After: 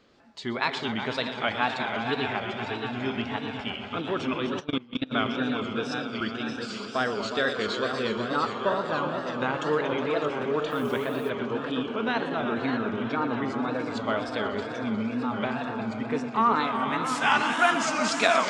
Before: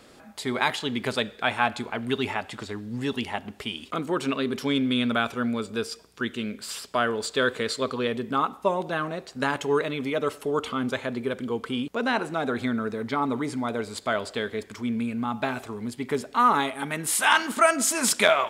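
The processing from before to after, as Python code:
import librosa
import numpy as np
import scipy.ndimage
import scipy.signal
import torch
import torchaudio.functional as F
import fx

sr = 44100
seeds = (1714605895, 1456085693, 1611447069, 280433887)

p1 = fx.reverse_delay_fb(x, sr, ms=621, feedback_pct=66, wet_db=-8)
p2 = scipy.signal.sosfilt(scipy.signal.butter(4, 6000.0, 'lowpass', fs=sr, output='sos'), p1)
p3 = p2 + fx.echo_heads(p2, sr, ms=122, heads='all three', feedback_pct=64, wet_db=-12.5, dry=0)
p4 = fx.level_steps(p3, sr, step_db=22, at=(4.59, 5.11), fade=0.02)
p5 = fx.dmg_noise_colour(p4, sr, seeds[0], colour='white', level_db=-51.0, at=(10.7, 11.29), fade=0.02)
p6 = fx.noise_reduce_blind(p5, sr, reduce_db=6)
p7 = fx.wow_flutter(p6, sr, seeds[1], rate_hz=2.1, depth_cents=120.0)
y = p7 * librosa.db_to_amplitude(-3.0)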